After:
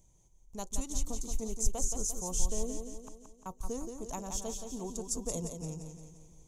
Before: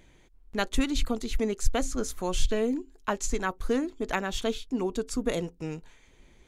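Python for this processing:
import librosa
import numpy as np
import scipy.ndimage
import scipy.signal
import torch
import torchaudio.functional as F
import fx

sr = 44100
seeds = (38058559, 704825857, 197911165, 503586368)

p1 = fx.rider(x, sr, range_db=3, speed_s=2.0)
p2 = fx.curve_eq(p1, sr, hz=(170.0, 260.0, 1000.0, 1600.0, 4900.0), db=(0, -10, -4, -24, -2))
p3 = fx.gate_flip(p2, sr, shuts_db=-35.0, range_db=-37, at=(2.76, 3.46))
p4 = fx.high_shelf_res(p3, sr, hz=5200.0, db=6.0, q=3.0)
p5 = p4 + fx.echo_feedback(p4, sr, ms=174, feedback_pct=51, wet_db=-6.5, dry=0)
y = F.gain(torch.from_numpy(p5), -4.5).numpy()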